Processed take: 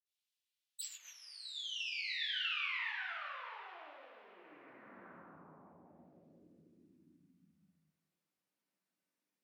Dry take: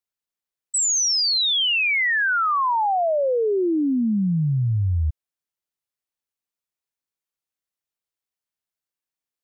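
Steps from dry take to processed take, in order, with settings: one-sided wavefolder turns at -31.5 dBFS; filtered feedback delay 200 ms, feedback 38%, level -12.5 dB; reverberation RT60 1.9 s, pre-delay 46 ms; low-pass that closes with the level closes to 1.3 kHz, closed at -23 dBFS; gain riding within 4 dB 2 s; high-pass sweep 3.2 kHz -> 210 Hz, 4.27–7.55 s; trim -3 dB

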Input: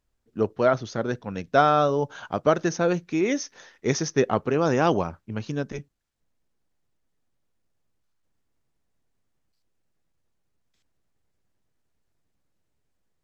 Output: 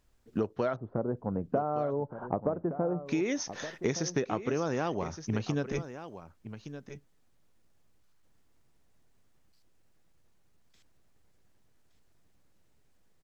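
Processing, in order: 0.76–3.06 s: low-pass 1 kHz 24 dB/octave; compression 12:1, threshold -34 dBFS, peak gain reduction 19.5 dB; delay 1168 ms -12 dB; trim +7 dB

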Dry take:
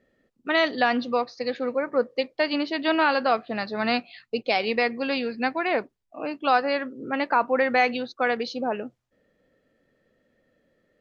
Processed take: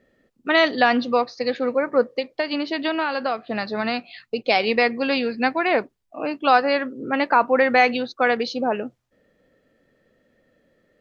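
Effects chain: 2.12–4.44 s: compression, threshold -25 dBFS, peak gain reduction 8.5 dB; trim +4.5 dB

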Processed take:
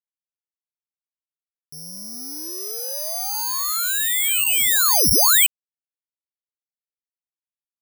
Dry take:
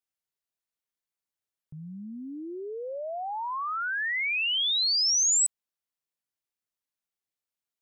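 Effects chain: reverse echo 459 ms -20 dB; crossover distortion -46.5 dBFS; careless resampling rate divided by 8×, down none, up zero stuff

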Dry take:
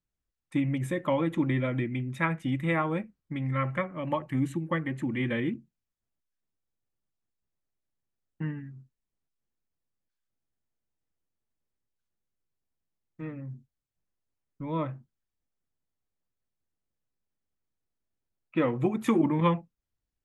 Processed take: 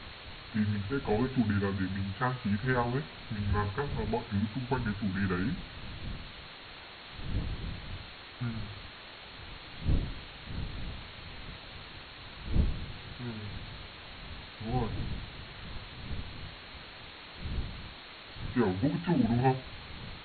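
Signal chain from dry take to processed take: rotating-head pitch shifter -4.5 st; wind noise 110 Hz -39 dBFS; flange 0.16 Hz, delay 8.5 ms, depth 6.1 ms, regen -88%; in parallel at -5 dB: word length cut 6-bit, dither triangular; on the sum: brick-wall FIR low-pass 4.4 kHz

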